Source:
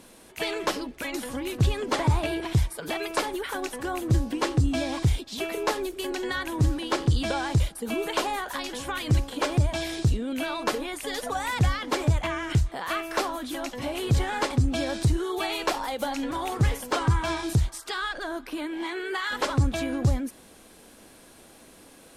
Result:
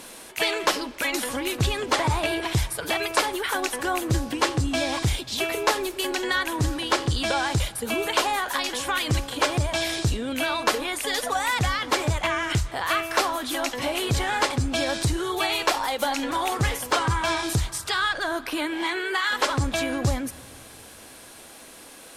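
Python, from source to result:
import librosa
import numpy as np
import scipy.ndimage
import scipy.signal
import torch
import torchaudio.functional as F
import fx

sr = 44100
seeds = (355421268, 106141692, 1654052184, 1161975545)

p1 = fx.low_shelf(x, sr, hz=440.0, db=-10.5)
p2 = fx.rider(p1, sr, range_db=10, speed_s=0.5)
p3 = p1 + (p2 * librosa.db_to_amplitude(2.0))
y = fx.rev_freeverb(p3, sr, rt60_s=3.3, hf_ratio=0.65, predelay_ms=30, drr_db=20.0)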